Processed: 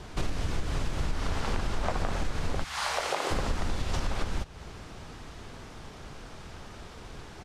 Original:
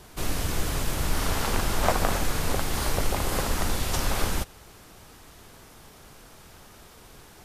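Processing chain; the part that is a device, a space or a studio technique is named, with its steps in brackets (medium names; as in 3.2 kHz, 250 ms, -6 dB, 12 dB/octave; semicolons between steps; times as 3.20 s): 2.63–3.30 s: high-pass 1.1 kHz -> 320 Hz 24 dB/octave; distance through air 110 m; ASMR close-microphone chain (bass shelf 170 Hz +3.5 dB; compression 6:1, threshold -30 dBFS, peak gain reduction 14.5 dB; treble shelf 8.4 kHz +6.5 dB); frequency-shifting echo 420 ms, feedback 51%, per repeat -83 Hz, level -24 dB; trim +4.5 dB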